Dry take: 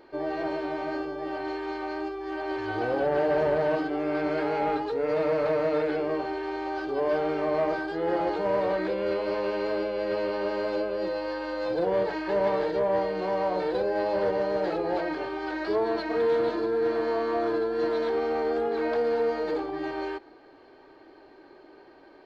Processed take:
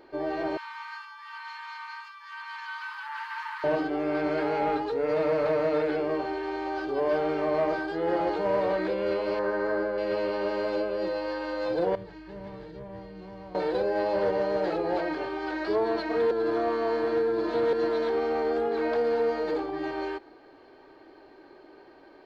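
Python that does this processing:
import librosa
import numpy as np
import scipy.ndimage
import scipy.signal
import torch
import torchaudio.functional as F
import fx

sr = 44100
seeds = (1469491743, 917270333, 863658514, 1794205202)

y = fx.brickwall_highpass(x, sr, low_hz=850.0, at=(0.57, 3.64))
y = fx.high_shelf_res(y, sr, hz=2100.0, db=-7.0, q=3.0, at=(9.39, 9.98))
y = fx.curve_eq(y, sr, hz=(130.0, 560.0, 3500.0), db=(0, -20, -14), at=(11.95, 13.55))
y = fx.edit(y, sr, fx.reverse_span(start_s=16.31, length_s=1.42), tone=tone)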